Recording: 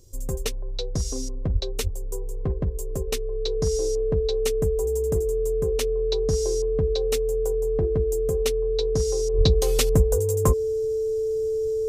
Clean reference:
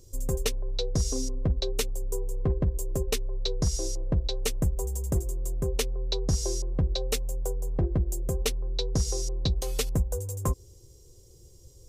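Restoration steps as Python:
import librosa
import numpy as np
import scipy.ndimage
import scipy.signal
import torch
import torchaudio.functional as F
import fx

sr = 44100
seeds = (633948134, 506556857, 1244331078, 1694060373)

y = fx.notch(x, sr, hz=440.0, q=30.0)
y = fx.highpass(y, sr, hz=140.0, slope=24, at=(1.52, 1.64), fade=0.02)
y = fx.highpass(y, sr, hz=140.0, slope=24, at=(1.83, 1.95), fade=0.02)
y = fx.highpass(y, sr, hz=140.0, slope=24, at=(9.37, 9.49), fade=0.02)
y = fx.gain(y, sr, db=fx.steps((0.0, 0.0), (9.34, -7.0)))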